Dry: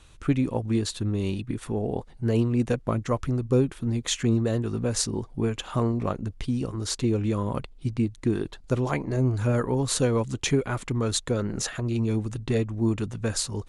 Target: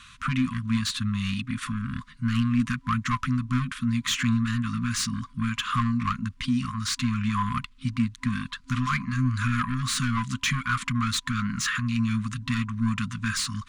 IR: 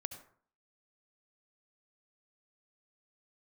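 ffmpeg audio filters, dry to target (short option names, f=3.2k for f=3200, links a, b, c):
-filter_complex "[0:a]asplit=2[a][b];[b]highpass=f=720:p=1,volume=22dB,asoftclip=type=tanh:threshold=-11dB[c];[a][c]amix=inputs=2:normalize=0,lowpass=f=2.4k:p=1,volume=-6dB,afftfilt=real='re*(1-between(b*sr/4096,260,1000))':imag='im*(1-between(b*sr/4096,260,1000))':win_size=4096:overlap=0.75,volume=-1.5dB"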